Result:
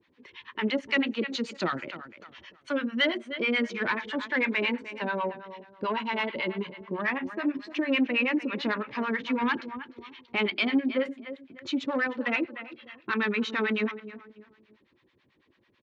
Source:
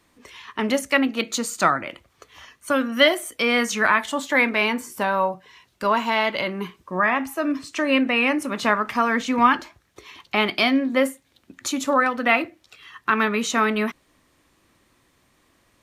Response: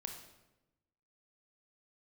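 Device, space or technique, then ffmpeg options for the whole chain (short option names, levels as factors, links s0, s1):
guitar amplifier with harmonic tremolo: -filter_complex "[0:a]asettb=1/sr,asplit=3[s0][s1][s2];[s0]atrim=end=0.874[s3];[s1]atrim=start=0.87:end=2.72,asetpts=PTS-STARTPTS,afade=t=in:d=0.004:c=qsin,afade=t=out:st=1.846:d=0.004:c=qsin,highshelf=f=4300:g=7.5[s4];[s2]atrim=start=2.716[s5];[s3][s4]acrossfade=d=0.004:c1=hsin:c2=qsin[s6];[s6][s5]acrossfade=d=0.004:c1=qsin:c2=hsin,asplit=2[s7][s8];[s8]adelay=298,lowpass=f=3200:p=1,volume=0.2,asplit=2[s9][s10];[s10]adelay=298,lowpass=f=3200:p=1,volume=0.31,asplit=2[s11][s12];[s12]adelay=298,lowpass=f=3200:p=1,volume=0.31[s13];[s7][s9][s11][s13]amix=inputs=4:normalize=0,acrossover=split=700[s14][s15];[s14]aeval=exprs='val(0)*(1-1/2+1/2*cos(2*PI*9.1*n/s))':c=same[s16];[s15]aeval=exprs='val(0)*(1-1/2-1/2*cos(2*PI*9.1*n/s))':c=same[s17];[s16][s17]amix=inputs=2:normalize=0,asoftclip=type=tanh:threshold=0.141,highpass=100,equalizer=f=370:t=q:w=4:g=5,equalizer=f=700:t=q:w=4:g=-9,equalizer=f=1200:t=q:w=4:g=-7,lowpass=f=3900:w=0.5412,lowpass=f=3900:w=1.3066"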